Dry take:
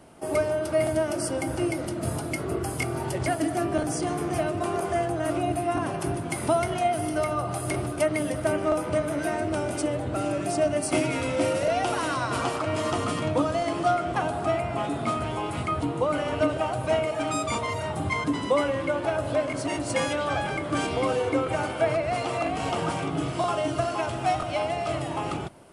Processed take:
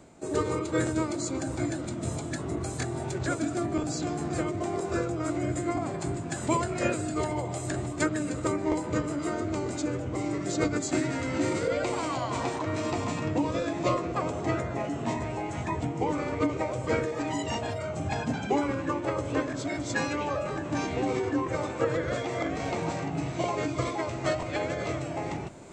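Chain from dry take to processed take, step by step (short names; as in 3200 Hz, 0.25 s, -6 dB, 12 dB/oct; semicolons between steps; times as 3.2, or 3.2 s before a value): reverse; upward compressor, threshold -35 dBFS; reverse; formant shift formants -4 st; gain -3 dB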